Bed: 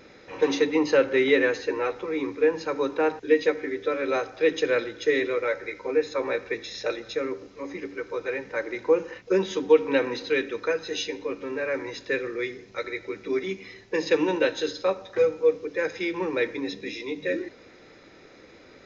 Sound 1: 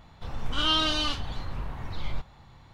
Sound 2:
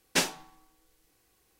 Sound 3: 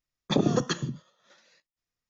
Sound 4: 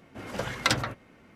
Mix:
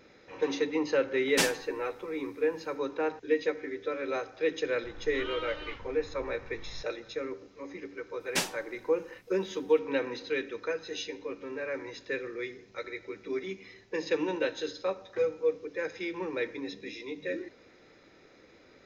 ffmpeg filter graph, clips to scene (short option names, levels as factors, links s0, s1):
-filter_complex "[2:a]asplit=2[s0][s1];[0:a]volume=0.447[s2];[1:a]lowpass=f=2100:t=q:w=2[s3];[s0]atrim=end=1.59,asetpts=PTS-STARTPTS,volume=0.891,afade=t=in:d=0.1,afade=t=out:st=1.49:d=0.1,adelay=1220[s4];[s3]atrim=end=2.73,asetpts=PTS-STARTPTS,volume=0.188,afade=t=in:d=0.004:c=hsin,afade=t=out:st=2.726:d=0.004:c=hsin,adelay=4620[s5];[s1]atrim=end=1.59,asetpts=PTS-STARTPTS,volume=0.668,afade=t=in:d=0.004:c=hsin,afade=t=out:st=1.586:d=0.004:c=hsin,adelay=8200[s6];[s2][s4][s5][s6]amix=inputs=4:normalize=0"